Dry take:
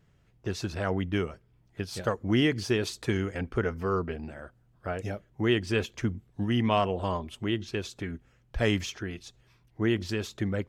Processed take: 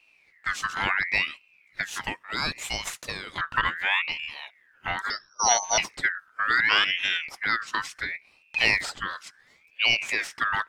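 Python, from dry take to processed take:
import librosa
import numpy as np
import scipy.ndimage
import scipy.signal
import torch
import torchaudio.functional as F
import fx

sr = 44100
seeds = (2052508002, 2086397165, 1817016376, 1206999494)

y = fx.highpass(x, sr, hz=1200.0, slope=6, at=(2.01, 3.38))
y = fx.freq_invert(y, sr, carrier_hz=3600, at=(5.1, 5.78))
y = fx.ring_lfo(y, sr, carrier_hz=2000.0, swing_pct=30, hz=0.71)
y = y * librosa.db_to_amplitude(6.0)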